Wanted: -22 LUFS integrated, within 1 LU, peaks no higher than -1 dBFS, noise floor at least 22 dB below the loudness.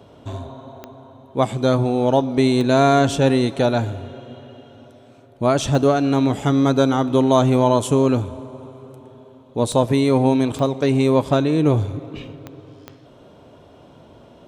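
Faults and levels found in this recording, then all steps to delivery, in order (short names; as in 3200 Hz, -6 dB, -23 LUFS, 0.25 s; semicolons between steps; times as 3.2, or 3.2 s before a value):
clicks 7; loudness -18.0 LUFS; peak -3.5 dBFS; loudness target -22.0 LUFS
-> de-click; gain -4 dB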